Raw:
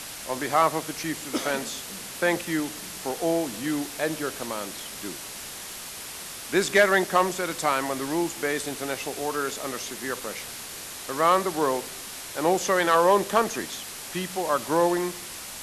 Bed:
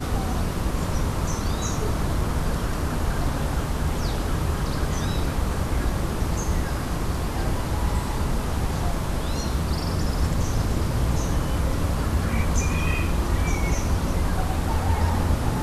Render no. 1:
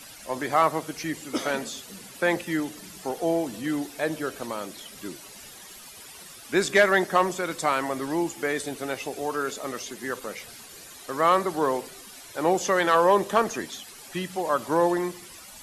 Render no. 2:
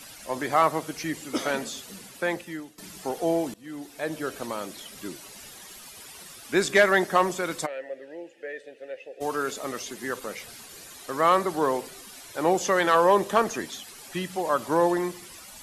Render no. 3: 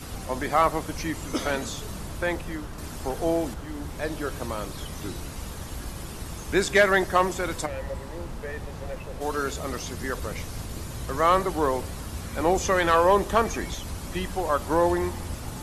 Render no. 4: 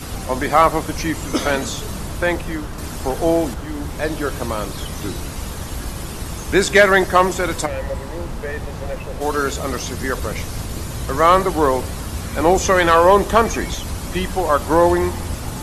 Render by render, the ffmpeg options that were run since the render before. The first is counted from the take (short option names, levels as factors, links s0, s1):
-af "afftdn=nr=12:nf=-39"
-filter_complex "[0:a]asplit=3[s0][s1][s2];[s0]afade=t=out:st=7.65:d=0.02[s3];[s1]asplit=3[s4][s5][s6];[s4]bandpass=f=530:t=q:w=8,volume=1[s7];[s5]bandpass=f=1840:t=q:w=8,volume=0.501[s8];[s6]bandpass=f=2480:t=q:w=8,volume=0.355[s9];[s7][s8][s9]amix=inputs=3:normalize=0,afade=t=in:st=7.65:d=0.02,afade=t=out:st=9.2:d=0.02[s10];[s2]afade=t=in:st=9.2:d=0.02[s11];[s3][s10][s11]amix=inputs=3:normalize=0,asplit=3[s12][s13][s14];[s12]atrim=end=2.78,asetpts=PTS-STARTPTS,afade=t=out:st=1.93:d=0.85:silence=0.125893[s15];[s13]atrim=start=2.78:end=3.54,asetpts=PTS-STARTPTS,afade=t=in:d=0.004:c=hsin:silence=0.125893,afade=t=out:st=0.756:d=0.004:c=hsin:silence=0.0794328[s16];[s14]atrim=start=3.54,asetpts=PTS-STARTPTS,afade=t=in:d=0.8:silence=0.0794328[s17];[s15][s16][s17]concat=n=3:v=0:a=1"
-filter_complex "[1:a]volume=0.251[s0];[0:a][s0]amix=inputs=2:normalize=0"
-af "volume=2.51,alimiter=limit=0.794:level=0:latency=1"